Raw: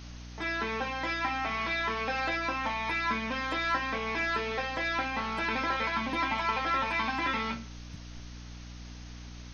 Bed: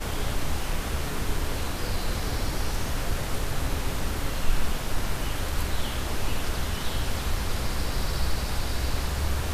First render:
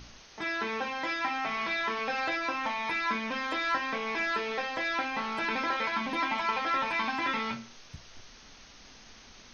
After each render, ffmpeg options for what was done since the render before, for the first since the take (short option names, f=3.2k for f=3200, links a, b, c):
-af "bandreject=f=60:t=h:w=6,bandreject=f=120:t=h:w=6,bandreject=f=180:t=h:w=6,bandreject=f=240:t=h:w=6,bandreject=f=300:t=h:w=6"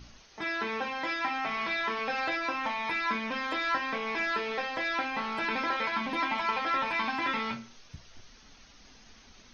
-af "afftdn=nr=6:nf=-53"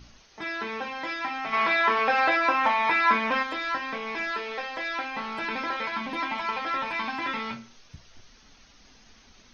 -filter_complex "[0:a]asplit=3[a][b][c];[a]afade=t=out:st=1.52:d=0.02[d];[b]equalizer=f=990:w=0.35:g=10.5,afade=t=in:st=1.52:d=0.02,afade=t=out:st=3.42:d=0.02[e];[c]afade=t=in:st=3.42:d=0.02[f];[d][e][f]amix=inputs=3:normalize=0,asettb=1/sr,asplit=3[g][h][i];[g]atrim=end=4.314[j];[h]atrim=start=4.31:end=5.16,asetpts=PTS-STARTPTS,afade=t=in:d=0.004:c=qsin,afade=t=out:st=0.846:d=0.004:c=qsin,equalizer=f=130:w=0.91:g=-10[k];[i]atrim=start=5.156[l];[j][k]acrossfade=d=0.004:c1=hsin:c2=qsin[m];[m][l]acrossfade=d=0.004:c1=qsin:c2=hsin"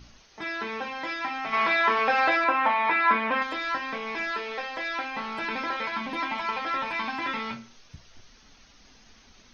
-filter_complex "[0:a]asettb=1/sr,asplit=3[a][b][c];[a]atrim=end=2.444[d];[b]atrim=start=2.44:end=3.42,asetpts=PTS-STARTPTS,afade=t=in:d=0.004:c=qsin,afade=t=out:st=0.976:d=0.004:c=qsin,highpass=160,lowpass=3.1k[e];[c]atrim=start=3.416[f];[d][e]acrossfade=d=0.004:c1=hsin:c2=qsin[g];[g][f]acrossfade=d=0.004:c1=qsin:c2=hsin"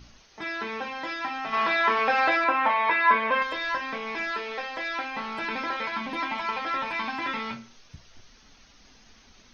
-filter_complex "[0:a]asettb=1/sr,asplit=3[a][b][c];[a]atrim=end=1.004[d];[b]atrim=start=1:end=1.85,asetpts=PTS-STARTPTS,afade=t=in:d=0.004:c=qsin,afade=t=out:st=0.846:d=0.004:c=qsin,bandreject=f=2.2k:w=8.5[e];[c]atrim=start=1.846[f];[d][e]acrossfade=d=0.004:c1=hsin:c2=qsin[g];[g][f]acrossfade=d=0.004:c1=qsin:c2=hsin,asettb=1/sr,asplit=3[h][i][j];[h]atrim=end=2.694[k];[i]atrim=start=2.69:end=3.81,asetpts=PTS-STARTPTS,afade=t=in:d=0.004:c=qsin,afade=t=out:st=1.116:d=0.004:c=qsin,aecho=1:1:1.9:0.5,atrim=end_sample=49392[l];[j]atrim=start=3.806[m];[k][l]acrossfade=d=0.004:c1=hsin:c2=qsin[n];[n][m]acrossfade=d=0.004:c1=qsin:c2=hsin"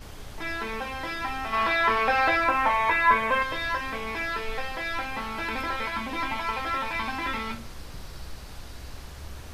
-filter_complex "[1:a]volume=-13.5dB[a];[0:a][a]amix=inputs=2:normalize=0"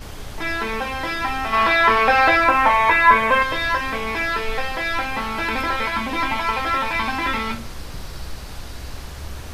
-af "volume=7.5dB,alimiter=limit=-2dB:level=0:latency=1"